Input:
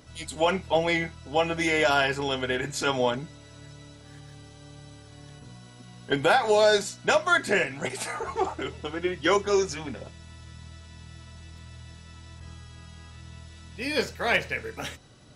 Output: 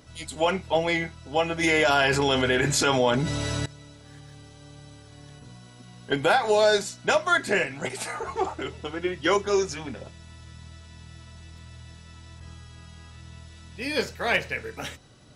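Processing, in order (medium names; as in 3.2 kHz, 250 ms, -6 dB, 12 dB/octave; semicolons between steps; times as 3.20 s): 1.63–3.66 s: level flattener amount 70%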